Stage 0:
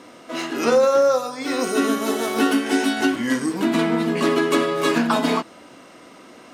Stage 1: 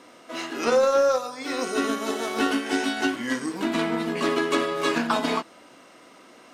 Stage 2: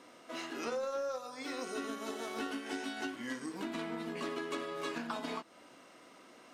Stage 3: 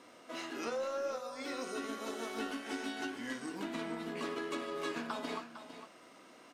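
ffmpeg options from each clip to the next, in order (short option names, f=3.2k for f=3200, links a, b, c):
-filter_complex "[0:a]lowshelf=f=300:g=-6.5,acrossover=split=8600[a][b];[b]acompressor=threshold=-49dB:ratio=4:attack=1:release=60[c];[a][c]amix=inputs=2:normalize=0,aeval=exprs='0.447*(cos(1*acos(clip(val(0)/0.447,-1,1)))-cos(1*PI/2))+0.0126*(cos(7*acos(clip(val(0)/0.447,-1,1)))-cos(7*PI/2))':c=same,volume=-2dB"
-af "acompressor=threshold=-32dB:ratio=2.5,volume=-7dB"
-filter_complex "[0:a]flanger=delay=8.4:depth=7.4:regen=83:speed=0.87:shape=sinusoidal,asplit=2[a][b];[b]aecho=0:1:455:0.282[c];[a][c]amix=inputs=2:normalize=0,volume=4dB"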